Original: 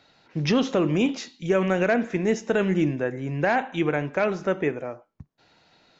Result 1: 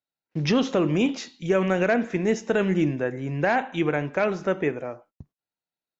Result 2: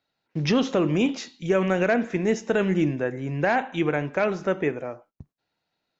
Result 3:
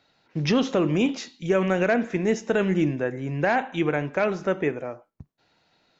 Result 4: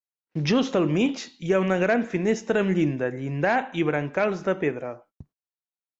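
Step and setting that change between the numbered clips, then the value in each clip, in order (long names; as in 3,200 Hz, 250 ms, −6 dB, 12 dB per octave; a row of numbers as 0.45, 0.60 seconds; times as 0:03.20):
noise gate, range: −37, −20, −6, −51 decibels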